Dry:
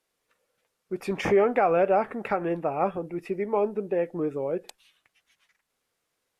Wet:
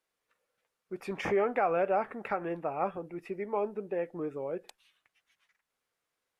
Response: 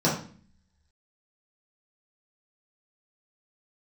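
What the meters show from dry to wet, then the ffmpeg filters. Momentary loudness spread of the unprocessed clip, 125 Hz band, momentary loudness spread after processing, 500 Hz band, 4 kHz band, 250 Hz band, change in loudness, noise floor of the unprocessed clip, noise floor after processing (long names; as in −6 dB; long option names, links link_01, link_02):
11 LU, −8.5 dB, 12 LU, −7.0 dB, can't be measured, −8.0 dB, −6.5 dB, −80 dBFS, below −85 dBFS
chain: -af "equalizer=frequency=1400:width=0.55:gain=4.5,volume=-8.5dB"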